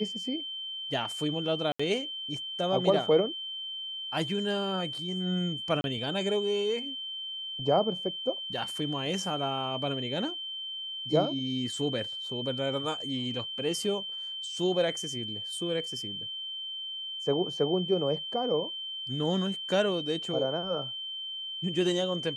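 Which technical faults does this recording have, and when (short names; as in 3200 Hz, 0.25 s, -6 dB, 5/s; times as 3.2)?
tone 3100 Hz -35 dBFS
1.72–1.79 gap 75 ms
5.81–5.84 gap 31 ms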